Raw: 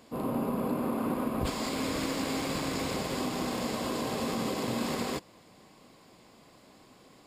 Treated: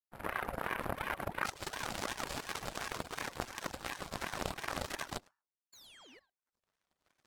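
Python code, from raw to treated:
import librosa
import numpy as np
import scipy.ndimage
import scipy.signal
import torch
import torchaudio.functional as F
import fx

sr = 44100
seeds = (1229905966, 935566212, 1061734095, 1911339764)

p1 = fx.recorder_agc(x, sr, target_db=-29.0, rise_db_per_s=6.3, max_gain_db=30)
p2 = fx.spec_paint(p1, sr, seeds[0], shape='fall', start_s=5.72, length_s=0.48, low_hz=1100.0, high_hz=6000.0, level_db=-36.0)
p3 = fx.power_curve(p2, sr, exponent=3.0)
p4 = fx.hum_notches(p3, sr, base_hz=50, count=9)
p5 = fx.comb_fb(p4, sr, f0_hz=140.0, decay_s=0.37, harmonics='all', damping=0.0, mix_pct=40)
p6 = p5 + fx.echo_single(p5, sr, ms=105, db=-12.5, dry=0)
p7 = fx.dereverb_blind(p6, sr, rt60_s=0.58)
p8 = fx.level_steps(p7, sr, step_db=17)
p9 = p7 + (p8 * 10.0 ** (2.5 / 20.0))
p10 = fx.ring_lfo(p9, sr, carrier_hz=840.0, swing_pct=65, hz=2.8)
y = p10 * 10.0 ** (5.0 / 20.0)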